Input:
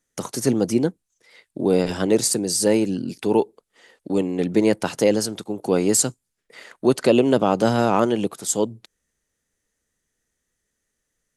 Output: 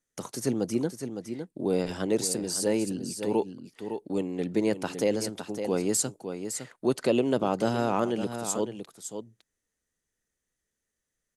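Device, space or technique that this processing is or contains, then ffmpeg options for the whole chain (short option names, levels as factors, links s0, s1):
ducked delay: -filter_complex "[0:a]asplit=3[s0][s1][s2];[s1]adelay=559,volume=0.398[s3];[s2]apad=whole_len=526008[s4];[s3][s4]sidechaincompress=threshold=0.0794:ratio=8:attack=16:release=108[s5];[s0][s5]amix=inputs=2:normalize=0,volume=0.398"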